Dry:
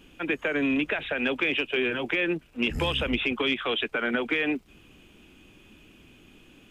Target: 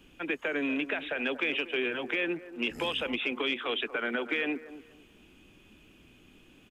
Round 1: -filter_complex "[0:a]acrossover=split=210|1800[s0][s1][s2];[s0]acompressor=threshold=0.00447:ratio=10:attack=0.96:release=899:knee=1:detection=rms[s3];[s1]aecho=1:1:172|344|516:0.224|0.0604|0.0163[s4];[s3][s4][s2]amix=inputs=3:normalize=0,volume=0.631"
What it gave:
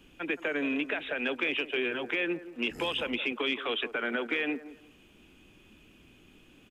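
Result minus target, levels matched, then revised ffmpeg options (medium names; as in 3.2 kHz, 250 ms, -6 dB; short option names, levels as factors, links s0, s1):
echo 66 ms early
-filter_complex "[0:a]acrossover=split=210|1800[s0][s1][s2];[s0]acompressor=threshold=0.00447:ratio=10:attack=0.96:release=899:knee=1:detection=rms[s3];[s1]aecho=1:1:238|476|714:0.224|0.0604|0.0163[s4];[s3][s4][s2]amix=inputs=3:normalize=0,volume=0.631"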